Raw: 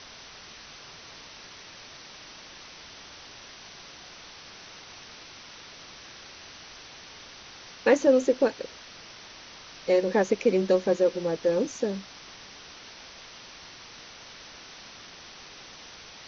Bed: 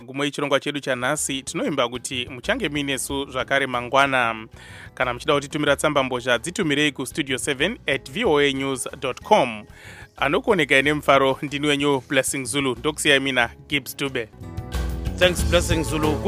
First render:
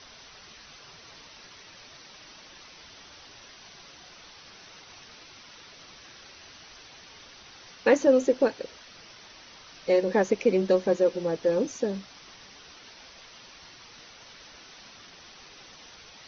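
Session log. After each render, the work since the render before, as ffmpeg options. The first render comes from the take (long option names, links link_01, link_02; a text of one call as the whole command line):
ffmpeg -i in.wav -af "afftdn=noise_reduction=6:noise_floor=-47" out.wav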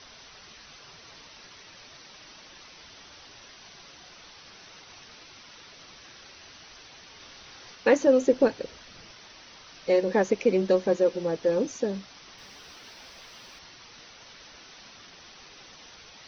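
ffmpeg -i in.wav -filter_complex "[0:a]asettb=1/sr,asplit=3[link_01][link_02][link_03];[link_01]atrim=end=7.184[link_04];[link_02]atrim=start=7.18:end=7.76,asetpts=PTS-STARTPTS,afade=type=in:duration=0.004:curve=qsin,afade=type=out:start_time=0.576:duration=0.004:curve=qsin,asplit=2[link_05][link_06];[link_06]adelay=26,volume=-4dB[link_07];[link_05][link_07]amix=inputs=2:normalize=0,atrim=end_sample=25578[link_08];[link_03]atrim=start=7.756[link_09];[link_04][link_08]acrossfade=duration=0.004:curve1=hsin:curve2=qsin[link_10];[link_10][link_09]acrossfade=duration=0.004:curve1=qsin:curve2=hsin,asettb=1/sr,asplit=3[link_11][link_12][link_13];[link_11]atrim=end=8.284[link_14];[link_12]atrim=start=8.28:end=9.11,asetpts=PTS-STARTPTS,afade=type=in:duration=0.004:curve=qsin,afade=type=out:start_time=0.826:duration=0.004:curve=qsin,lowshelf=frequency=230:gain=8[link_15];[link_13]atrim=start=9.106[link_16];[link_14][link_15]acrossfade=duration=0.004:curve1=hsin:curve2=qsin[link_17];[link_17][link_16]acrossfade=duration=0.004:curve1=qsin:curve2=hsin,asettb=1/sr,asplit=3[link_18][link_19][link_20];[link_18]atrim=end=12.384[link_21];[link_19]atrim=start=12.38:end=13.59,asetpts=PTS-STARTPTS,afade=type=in:duration=0.004:curve=qsin,afade=type=out:start_time=1.206:duration=0.004:curve=qsin,aeval=exprs='val(0)+0.5*0.0015*sgn(val(0))':channel_layout=same[link_22];[link_20]atrim=start=13.586[link_23];[link_21][link_22]acrossfade=duration=0.004:curve1=hsin:curve2=qsin[link_24];[link_24][link_23]acrossfade=duration=0.004:curve1=qsin:curve2=hsin" out.wav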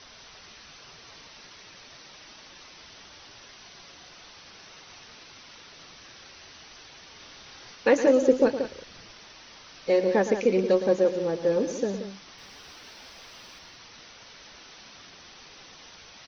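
ffmpeg -i in.wav -af "aecho=1:1:113|179:0.266|0.282" out.wav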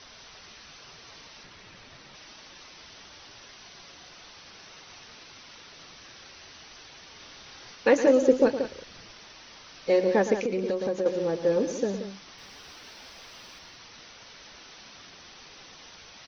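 ffmpeg -i in.wav -filter_complex "[0:a]asettb=1/sr,asplit=3[link_01][link_02][link_03];[link_01]atrim=end=1.434[link_04];[link_02]atrim=start=1.43:end=2.15,asetpts=PTS-STARTPTS,afade=type=in:duration=0.004:curve=qsin,afade=type=out:start_time=0.716:duration=0.004:curve=qsin,bass=frequency=250:gain=6,treble=frequency=4000:gain=-6[link_05];[link_03]atrim=start=2.146[link_06];[link_04][link_05]acrossfade=duration=0.004:curve1=hsin:curve2=qsin[link_07];[link_07][link_06]acrossfade=duration=0.004:curve1=qsin:curve2=hsin,asettb=1/sr,asplit=3[link_08][link_09][link_10];[link_08]atrim=end=10.414[link_11];[link_09]atrim=start=10.41:end=11.06,asetpts=PTS-STARTPTS,afade=type=in:duration=0.004:curve=qsin,afade=type=out:start_time=0.646:duration=0.004:curve=qsin,acompressor=threshold=-24dB:ratio=6:attack=3.2:release=140:knee=1:detection=peak[link_12];[link_10]atrim=start=11.056[link_13];[link_11][link_12]acrossfade=duration=0.004:curve1=hsin:curve2=qsin[link_14];[link_14][link_13]acrossfade=duration=0.004:curve1=qsin:curve2=hsin" out.wav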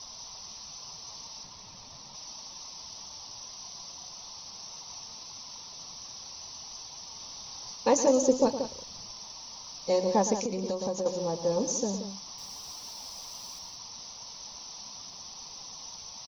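ffmpeg -i in.wav -af "firequalizer=gain_entry='entry(220,0);entry(340,-8);entry(970,6);entry(1500,-15);entry(5500,11)':delay=0.05:min_phase=1" out.wav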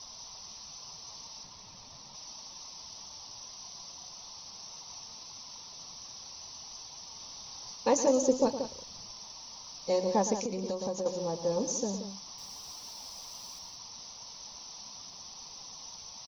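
ffmpeg -i in.wav -af "volume=-2.5dB" out.wav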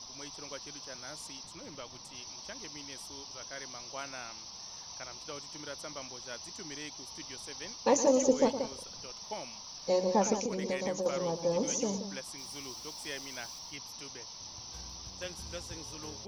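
ffmpeg -i in.wav -i bed.wav -filter_complex "[1:a]volume=-25dB[link_01];[0:a][link_01]amix=inputs=2:normalize=0" out.wav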